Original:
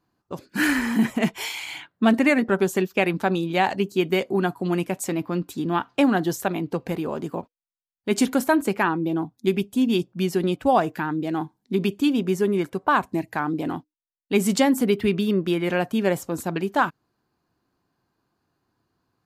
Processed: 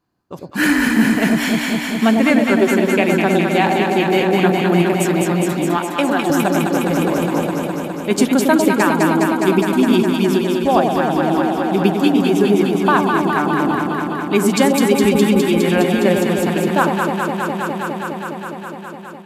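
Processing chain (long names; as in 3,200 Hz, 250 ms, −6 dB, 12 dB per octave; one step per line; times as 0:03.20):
on a send: delay that swaps between a low-pass and a high-pass 103 ms, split 830 Hz, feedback 90%, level −2.5 dB
on the sum: automatic gain control gain up to 7 dB
0:05.77–0:06.30: high-pass filter 460 Hz 6 dB per octave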